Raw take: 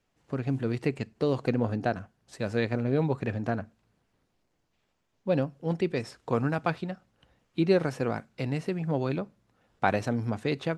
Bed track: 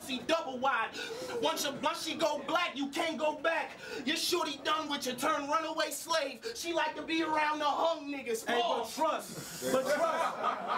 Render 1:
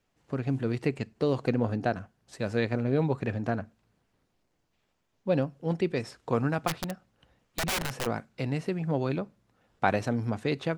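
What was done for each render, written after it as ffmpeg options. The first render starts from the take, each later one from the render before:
-filter_complex "[0:a]asplit=3[s0][s1][s2];[s0]afade=t=out:st=6.67:d=0.02[s3];[s1]aeval=exprs='(mod(15.8*val(0)+1,2)-1)/15.8':c=same,afade=t=in:st=6.67:d=0.02,afade=t=out:st=8.05:d=0.02[s4];[s2]afade=t=in:st=8.05:d=0.02[s5];[s3][s4][s5]amix=inputs=3:normalize=0"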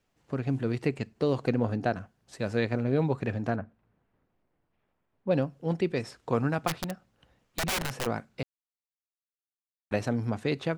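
-filter_complex "[0:a]asettb=1/sr,asplit=3[s0][s1][s2];[s0]atrim=end=3.564[s3];[s1]atrim=start=3.56:end=5.31,asetpts=PTS-STARTPTS,afade=t=in:d=0.004:c=qsin,afade=t=out:st=1.746:d=0.004:c=qsin,lowpass=2000[s4];[s2]atrim=start=5.306[s5];[s3][s4]acrossfade=d=0.004:c1=hsin:c2=qsin[s6];[s6][s5]acrossfade=d=0.004:c1=qsin:c2=hsin,asplit=3[s7][s8][s9];[s7]atrim=end=8.43,asetpts=PTS-STARTPTS,afade=t=out:st=8.426:d=0.004:c=hsin[s10];[s8]atrim=start=8.43:end=9.91,asetpts=PTS-STARTPTS,volume=0[s11];[s9]atrim=start=9.91,asetpts=PTS-STARTPTS,afade=t=in:d=0.004:c=hsin[s12];[s10][s11][s12]concat=n=3:v=0:a=1"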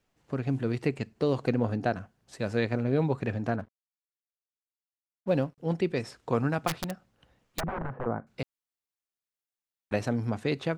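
-filter_complex "[0:a]asettb=1/sr,asplit=3[s0][s1][s2];[s0]atrim=end=3.594[s3];[s1]atrim=start=3.59:end=5.58,asetpts=PTS-STARTPTS,afade=t=in:d=0.004:c=qsin,afade=t=out:st=1.986:d=0.004:c=qsin,aeval=exprs='sgn(val(0))*max(abs(val(0))-0.00224,0)':c=same[s4];[s2]atrim=start=5.576[s5];[s3][s4]acrossfade=d=0.004:c1=hsin:c2=qsin[s6];[s6][s5]acrossfade=d=0.004:c1=qsin:c2=hsin,asettb=1/sr,asplit=3[s7][s8][s9];[s7]atrim=end=7.604[s10];[s8]atrim=start=7.6:end=8.27,asetpts=PTS-STARTPTS,afade=t=in:d=0.004:c=qsin,afade=t=out:st=0.666:d=0.004:c=qsin,lowpass=f=1400:w=0.5412,lowpass=f=1400:w=1.3066[s11];[s9]atrim=start=8.266[s12];[s10][s11]acrossfade=d=0.004:c1=hsin:c2=qsin[s13];[s13][s12]acrossfade=d=0.004:c1=qsin:c2=hsin"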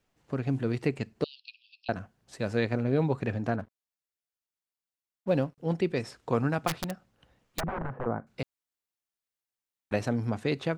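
-filter_complex "[0:a]asettb=1/sr,asplit=3[s0][s1][s2];[s0]atrim=end=1.244[s3];[s1]atrim=start=1.24:end=1.89,asetpts=PTS-STARTPTS,afade=t=in:d=0.004:c=qsin,afade=t=out:st=0.646:d=0.004:c=qsin,asuperpass=centerf=3700:order=20:qfactor=1.3[s4];[s2]atrim=start=1.886[s5];[s3][s4]acrossfade=d=0.004:c1=hsin:c2=qsin[s6];[s6][s5]acrossfade=d=0.004:c1=qsin:c2=hsin"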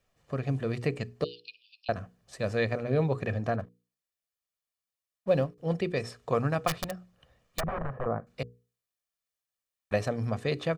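-af "bandreject=f=60:t=h:w=6,bandreject=f=120:t=h:w=6,bandreject=f=180:t=h:w=6,bandreject=f=240:t=h:w=6,bandreject=f=300:t=h:w=6,bandreject=f=360:t=h:w=6,bandreject=f=420:t=h:w=6,bandreject=f=480:t=h:w=6,aecho=1:1:1.7:0.44"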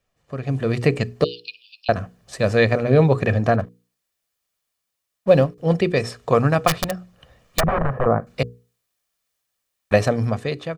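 -af "dynaudnorm=f=130:g=9:m=4.47"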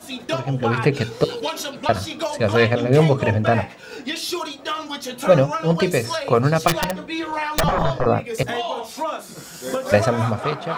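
-filter_complex "[1:a]volume=1.78[s0];[0:a][s0]amix=inputs=2:normalize=0"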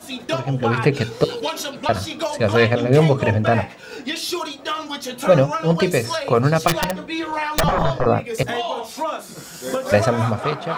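-af "volume=1.12,alimiter=limit=0.708:level=0:latency=1"

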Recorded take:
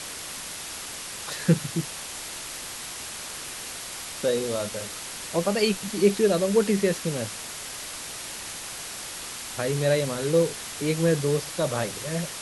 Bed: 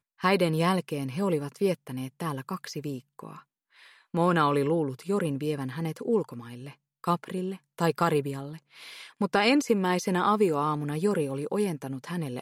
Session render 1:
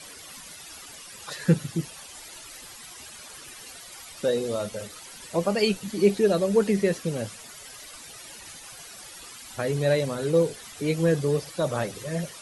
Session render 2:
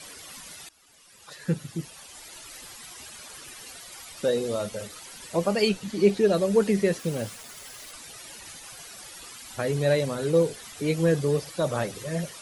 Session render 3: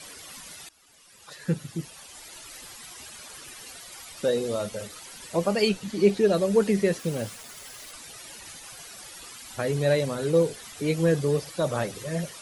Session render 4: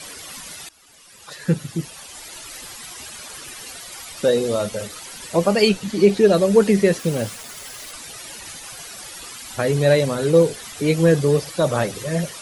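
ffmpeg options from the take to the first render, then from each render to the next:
-af "afftdn=nr=13:nf=-37"
-filter_complex "[0:a]asettb=1/sr,asplit=3[s0][s1][s2];[s0]atrim=end=5.694[s3];[s1]atrim=start=5.69:end=6.33,asetpts=PTS-STARTPTS,afade=t=in:d=0.004:c=qsin,afade=t=out:st=0.636:d=0.004:c=qsin,acrossover=split=7200[s4][s5];[s5]acompressor=threshold=0.00251:ratio=4:attack=1:release=60[s6];[s4][s6]amix=inputs=2:normalize=0[s7];[s2]atrim=start=6.326[s8];[s3][s7]acrossfade=d=0.004:c1=hsin:c2=qsin[s9];[s9][s8]acrossfade=d=0.004:c1=qsin:c2=hsin,asettb=1/sr,asplit=3[s10][s11][s12];[s10]atrim=end=6.994[s13];[s11]atrim=start=6.99:end=7.92,asetpts=PTS-STARTPTS,afade=t=in:d=0.004:c=qsin,afade=t=out:st=0.926:d=0.004:c=qsin,acrusher=bits=6:mix=0:aa=0.5[s14];[s12]atrim=start=7.916[s15];[s13][s14]acrossfade=d=0.004:c1=hsin:c2=qsin[s16];[s16][s15]acrossfade=d=0.004:c1=qsin:c2=hsin,asplit=2[s17][s18];[s17]atrim=end=0.69,asetpts=PTS-STARTPTS,afade=t=out:st=0.686:d=0.004:c=hsin:silence=0.0944061[s19];[s18]atrim=start=0.69,asetpts=PTS-STARTPTS,afade=t=in:d=1.9:silence=0.0944061[s20];[s19][s20]concat=n=2:v=0:a=1"
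-af anull
-af "volume=2.24,alimiter=limit=0.708:level=0:latency=1"

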